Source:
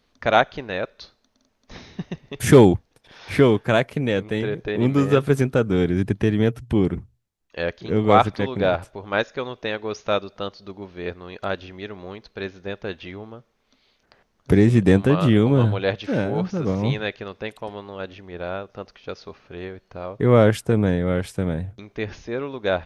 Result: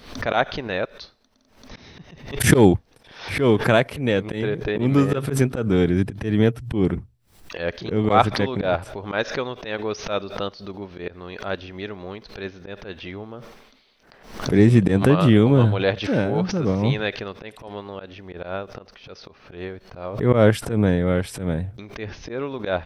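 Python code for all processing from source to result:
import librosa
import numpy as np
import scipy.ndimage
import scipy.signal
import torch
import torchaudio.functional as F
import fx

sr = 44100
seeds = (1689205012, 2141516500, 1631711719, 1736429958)

y = fx.chain(x, sr, fx.peak_eq(hz=77.0, db=-7.0, octaves=1.3),
    fx.sustainer(db_per_s=51.0), at=(13.32, 14.59))
y = fx.auto_swell(y, sr, attack_ms=116.0)
y = fx.notch(y, sr, hz=6700.0, q=8.3)
y = fx.pre_swell(y, sr, db_per_s=100.0)
y = F.gain(torch.from_numpy(y), 1.5).numpy()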